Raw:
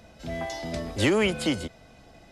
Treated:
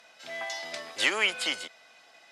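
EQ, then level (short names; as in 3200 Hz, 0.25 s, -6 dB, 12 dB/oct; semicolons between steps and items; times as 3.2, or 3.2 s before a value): band-pass 1500 Hz, Q 0.64; tilt +4 dB/oct; 0.0 dB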